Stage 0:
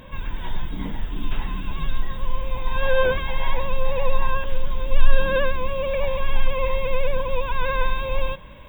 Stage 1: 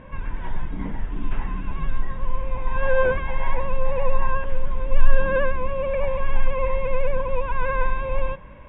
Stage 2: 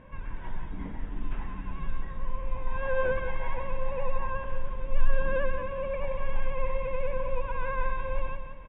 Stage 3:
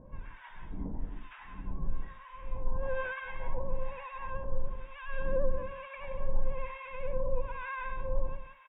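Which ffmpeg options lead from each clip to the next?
-af "lowpass=f=2.3k:w=0.5412,lowpass=f=2.3k:w=1.3066"
-af "aecho=1:1:177|354|531|708|885:0.398|0.159|0.0637|0.0255|0.0102,volume=-8dB"
-filter_complex "[0:a]acrossover=split=930[a][b];[a]aeval=exprs='val(0)*(1-1/2+1/2*cos(2*PI*1.1*n/s))':c=same[c];[b]aeval=exprs='val(0)*(1-1/2-1/2*cos(2*PI*1.1*n/s))':c=same[d];[c][d]amix=inputs=2:normalize=0"

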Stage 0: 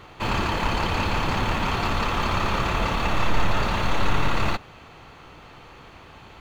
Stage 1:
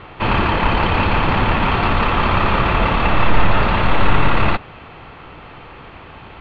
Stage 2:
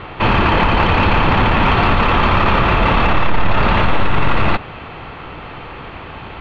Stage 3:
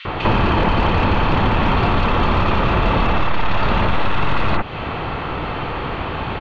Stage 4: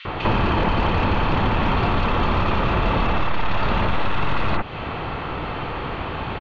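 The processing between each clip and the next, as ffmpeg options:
-af "lowpass=f=3.3k:w=0.5412,lowpass=f=3.3k:w=1.3066,volume=8dB"
-filter_complex "[0:a]asplit=2[a][b];[b]acontrast=62,volume=-3dB[c];[a][c]amix=inputs=2:normalize=0,alimiter=level_in=2.5dB:limit=-1dB:release=50:level=0:latency=1,volume=-4dB"
-filter_complex "[0:a]acrossover=split=710|2500[a][b][c];[a]acompressor=threshold=-24dB:ratio=4[d];[b]acompressor=threshold=-32dB:ratio=4[e];[c]acompressor=threshold=-38dB:ratio=4[f];[d][e][f]amix=inputs=3:normalize=0,acrossover=split=2300[g][h];[g]adelay=50[i];[i][h]amix=inputs=2:normalize=0,volume=8dB"
-af "aresample=16000,aresample=44100,volume=-3.5dB"

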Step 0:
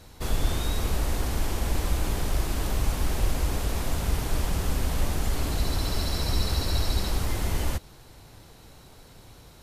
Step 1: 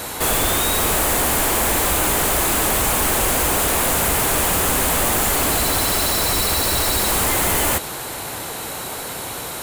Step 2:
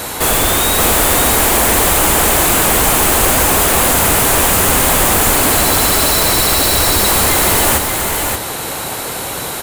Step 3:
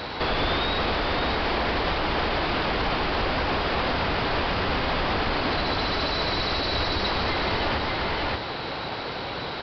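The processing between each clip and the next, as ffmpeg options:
-filter_complex "[0:a]asplit=2[a][b];[b]highpass=f=720:p=1,volume=34dB,asoftclip=type=tanh:threshold=-11.5dB[c];[a][c]amix=inputs=2:normalize=0,lowpass=f=2.6k:p=1,volume=-6dB,aexciter=amount=5.6:drive=3.4:freq=7.3k"
-af "aecho=1:1:578:0.562,volume=5.5dB"
-af "alimiter=limit=-7dB:level=0:latency=1,aresample=11025,aresample=44100,volume=-7dB"

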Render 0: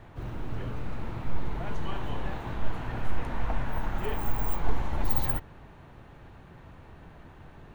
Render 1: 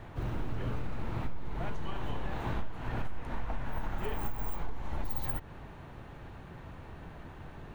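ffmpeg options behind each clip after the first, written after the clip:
-af "acompressor=threshold=-30dB:ratio=12,volume=2.5dB"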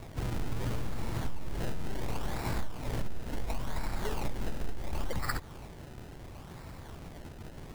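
-af "acrusher=samples=27:mix=1:aa=0.000001:lfo=1:lforange=27:lforate=0.71,volume=1dB"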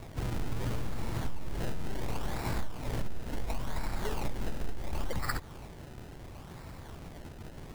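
-af anull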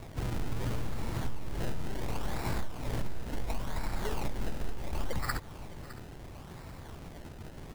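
-af "aecho=1:1:610:0.15"

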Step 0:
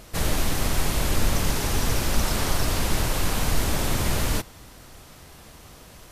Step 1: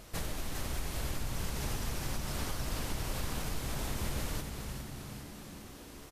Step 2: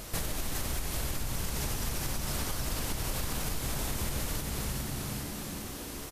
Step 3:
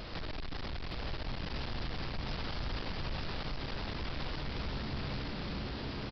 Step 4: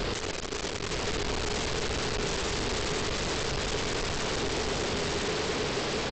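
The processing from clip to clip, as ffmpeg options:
-filter_complex "[0:a]acompressor=threshold=-27dB:ratio=6,asplit=2[a][b];[b]asplit=8[c][d][e][f][g][h][i][j];[c]adelay=406,afreqshift=-74,volume=-6.5dB[k];[d]adelay=812,afreqshift=-148,volume=-11.1dB[l];[e]adelay=1218,afreqshift=-222,volume=-15.7dB[m];[f]adelay=1624,afreqshift=-296,volume=-20.2dB[n];[g]adelay=2030,afreqshift=-370,volume=-24.8dB[o];[h]adelay=2436,afreqshift=-444,volume=-29.4dB[p];[i]adelay=2842,afreqshift=-518,volume=-34dB[q];[j]adelay=3248,afreqshift=-592,volume=-38.6dB[r];[k][l][m][n][o][p][q][r]amix=inputs=8:normalize=0[s];[a][s]amix=inputs=2:normalize=0,volume=-6dB"
-af "highshelf=f=6.4k:g=6.5,acompressor=threshold=-37dB:ratio=6,volume=8dB"
-af "aresample=11025,asoftclip=type=tanh:threshold=-38.5dB,aresample=44100,aecho=1:1:918:0.668,volume=2.5dB"
-af "aresample=16000,aeval=exprs='0.0355*sin(PI/2*4.47*val(0)/0.0355)':c=same,aresample=44100,equalizer=f=420:t=o:w=0.38:g=10.5"

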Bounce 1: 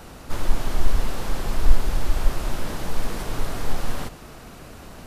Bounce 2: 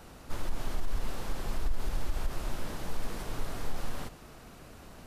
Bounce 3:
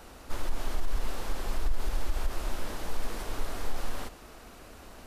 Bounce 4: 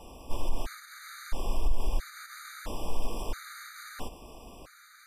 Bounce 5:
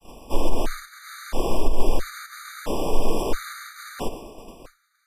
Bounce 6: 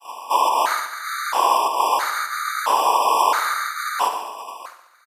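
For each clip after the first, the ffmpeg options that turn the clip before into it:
-af "alimiter=limit=-12dB:level=0:latency=1:release=57,volume=-8.5dB"
-af "equalizer=f=140:w=1.5:g=-10.5,volume=2.5dB"
-af "afftfilt=real='re*gt(sin(2*PI*0.75*pts/sr)*(1-2*mod(floor(b*sr/1024/1200),2)),0)':imag='im*gt(sin(2*PI*0.75*pts/sr)*(1-2*mod(floor(b*sr/1024/1200),2)),0)':win_size=1024:overlap=0.75,volume=2dB"
-af "afreqshift=-17,agate=range=-33dB:threshold=-41dB:ratio=3:detection=peak,adynamicequalizer=threshold=0.00158:dfrequency=410:dqfactor=0.88:tfrequency=410:tqfactor=0.88:attack=5:release=100:ratio=0.375:range=4:mode=boostabove:tftype=bell,volume=8.5dB"
-af "highpass=f=1k:t=q:w=4,aecho=1:1:71|142|213|284|355|426:0.282|0.158|0.0884|0.0495|0.0277|0.0155,volume=8.5dB"

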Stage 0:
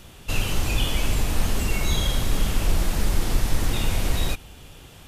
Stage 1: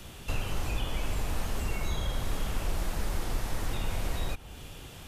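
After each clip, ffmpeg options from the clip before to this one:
-filter_complex "[0:a]acrossover=split=160|420|1800[a][b][c][d];[a]acompressor=threshold=-28dB:ratio=4[e];[b]acompressor=threshold=-48dB:ratio=4[f];[c]acompressor=threshold=-41dB:ratio=4[g];[d]acompressor=threshold=-45dB:ratio=4[h];[e][f][g][h]amix=inputs=4:normalize=0"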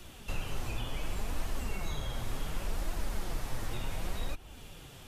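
-af "flanger=delay=2.6:depth=6.5:regen=52:speed=0.68:shape=triangular"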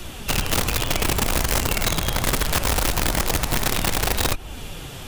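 -filter_complex "[0:a]asplit=2[a][b];[b]alimiter=level_in=9dB:limit=-24dB:level=0:latency=1:release=74,volume=-9dB,volume=3dB[c];[a][c]amix=inputs=2:normalize=0,aeval=exprs='(mod(15*val(0)+1,2)-1)/15':c=same,volume=7dB"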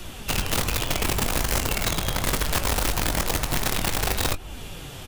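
-filter_complex "[0:a]asplit=2[a][b];[b]adelay=21,volume=-11dB[c];[a][c]amix=inputs=2:normalize=0,volume=-3dB"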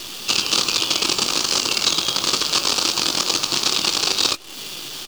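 -af "aexciter=amount=2.6:drive=8.3:freq=2.5k,highpass=230,equalizer=f=340:t=q:w=4:g=6,equalizer=f=680:t=q:w=4:g=-5,equalizer=f=1.2k:t=q:w=4:g=7,equalizer=f=2k:t=q:w=4:g=-8,equalizer=f=4.6k:t=q:w=4:g=7,lowpass=f=6.4k:w=0.5412,lowpass=f=6.4k:w=1.3066,acrusher=bits=6:dc=4:mix=0:aa=0.000001"

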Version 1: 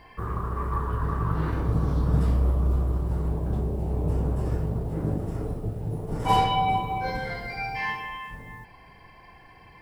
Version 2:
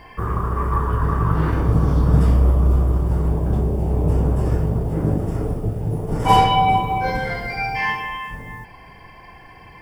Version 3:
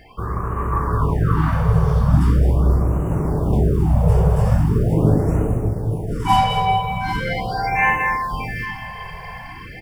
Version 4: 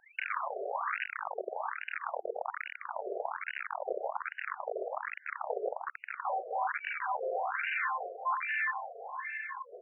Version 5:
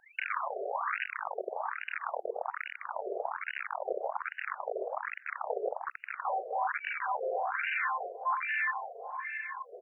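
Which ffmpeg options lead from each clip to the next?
-af "bandreject=f=4k:w=7.6,volume=7.5dB"
-filter_complex "[0:a]asplit=2[a][b];[b]aecho=0:1:213|803:0.355|0.211[c];[a][c]amix=inputs=2:normalize=0,dynaudnorm=f=250:g=7:m=10.5dB,afftfilt=real='re*(1-between(b*sr/1024,260*pow(4300/260,0.5+0.5*sin(2*PI*0.41*pts/sr))/1.41,260*pow(4300/260,0.5+0.5*sin(2*PI*0.41*pts/sr))*1.41))':imag='im*(1-between(b*sr/1024,260*pow(4300/260,0.5+0.5*sin(2*PI*0.41*pts/sr))/1.41,260*pow(4300/260,0.5+0.5*sin(2*PI*0.41*pts/sr))*1.41))':win_size=1024:overlap=0.75,volume=-2dB"
-af "acompressor=threshold=-23dB:ratio=16,aeval=exprs='(mod(10.6*val(0)+1,2)-1)/10.6':c=same,afftfilt=real='re*between(b*sr/1024,510*pow(2100/510,0.5+0.5*sin(2*PI*1.2*pts/sr))/1.41,510*pow(2100/510,0.5+0.5*sin(2*PI*1.2*pts/sr))*1.41)':imag='im*between(b*sr/1024,510*pow(2100/510,0.5+0.5*sin(2*PI*1.2*pts/sr))/1.41,510*pow(2100/510,0.5+0.5*sin(2*PI*1.2*pts/sr))*1.41)':win_size=1024:overlap=0.75"
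-filter_complex "[0:a]asplit=2[a][b];[b]adelay=779,lowpass=f=2.5k:p=1,volume=-21.5dB,asplit=2[c][d];[d]adelay=779,lowpass=f=2.5k:p=1,volume=0.28[e];[a][c][e]amix=inputs=3:normalize=0,volume=1dB"

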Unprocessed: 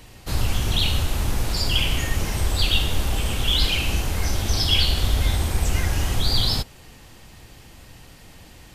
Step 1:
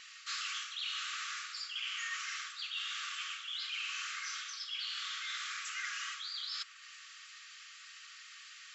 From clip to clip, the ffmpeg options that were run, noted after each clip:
-af "afftfilt=real='re*between(b*sr/4096,1100,7700)':imag='im*between(b*sr/4096,1100,7700)':win_size=4096:overlap=0.75,areverse,acompressor=threshold=-34dB:ratio=12,areverse,adynamicequalizer=threshold=0.00355:dfrequency=2700:dqfactor=0.7:tfrequency=2700:tqfactor=0.7:attack=5:release=100:ratio=0.375:range=2.5:mode=cutabove:tftype=highshelf"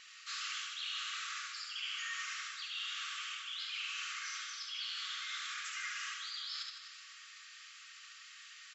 -af "aecho=1:1:70|154|254.8|375.8|520.9:0.631|0.398|0.251|0.158|0.1,volume=-3.5dB"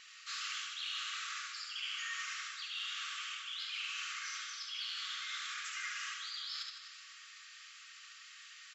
-af "aeval=exprs='0.0398*(cos(1*acos(clip(val(0)/0.0398,-1,1)))-cos(1*PI/2))+0.00178*(cos(3*acos(clip(val(0)/0.0398,-1,1)))-cos(3*PI/2))':c=same,volume=1dB"

